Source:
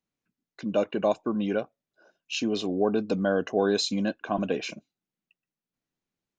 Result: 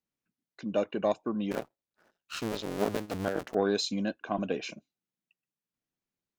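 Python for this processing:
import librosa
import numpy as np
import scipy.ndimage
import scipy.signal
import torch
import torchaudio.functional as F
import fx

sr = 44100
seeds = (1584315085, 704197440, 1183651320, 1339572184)

y = fx.cycle_switch(x, sr, every=2, mode='muted', at=(1.51, 3.55))
y = fx.cheby_harmonics(y, sr, harmonics=(2, 3), levels_db=(-34, -22), full_scale_db=-11.5)
y = y * 10.0 ** (-2.0 / 20.0)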